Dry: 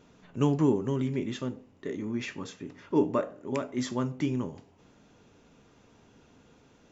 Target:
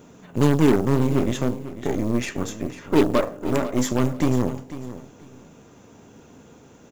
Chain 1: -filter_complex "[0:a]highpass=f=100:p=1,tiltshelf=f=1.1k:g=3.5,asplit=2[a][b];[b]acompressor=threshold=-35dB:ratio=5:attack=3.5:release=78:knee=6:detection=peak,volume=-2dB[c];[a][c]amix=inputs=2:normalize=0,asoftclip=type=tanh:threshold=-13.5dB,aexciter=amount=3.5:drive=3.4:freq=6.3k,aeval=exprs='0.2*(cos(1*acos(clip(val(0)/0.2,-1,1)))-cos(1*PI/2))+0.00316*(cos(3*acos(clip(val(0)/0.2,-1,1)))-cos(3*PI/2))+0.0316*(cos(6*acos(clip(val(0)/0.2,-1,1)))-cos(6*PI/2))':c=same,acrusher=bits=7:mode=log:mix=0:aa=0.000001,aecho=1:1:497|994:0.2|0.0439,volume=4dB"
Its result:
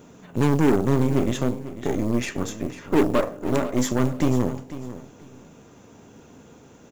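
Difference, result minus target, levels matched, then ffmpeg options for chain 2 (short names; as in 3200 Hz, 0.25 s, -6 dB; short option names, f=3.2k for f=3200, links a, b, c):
soft clip: distortion +20 dB
-filter_complex "[0:a]highpass=f=100:p=1,tiltshelf=f=1.1k:g=3.5,asplit=2[a][b];[b]acompressor=threshold=-35dB:ratio=5:attack=3.5:release=78:knee=6:detection=peak,volume=-2dB[c];[a][c]amix=inputs=2:normalize=0,asoftclip=type=tanh:threshold=-2dB,aexciter=amount=3.5:drive=3.4:freq=6.3k,aeval=exprs='0.2*(cos(1*acos(clip(val(0)/0.2,-1,1)))-cos(1*PI/2))+0.00316*(cos(3*acos(clip(val(0)/0.2,-1,1)))-cos(3*PI/2))+0.0316*(cos(6*acos(clip(val(0)/0.2,-1,1)))-cos(6*PI/2))':c=same,acrusher=bits=7:mode=log:mix=0:aa=0.000001,aecho=1:1:497|994:0.2|0.0439,volume=4dB"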